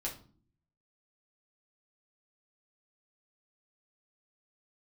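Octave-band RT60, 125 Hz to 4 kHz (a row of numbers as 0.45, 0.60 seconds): 0.90, 0.75, 0.50, 0.40, 0.30, 0.35 seconds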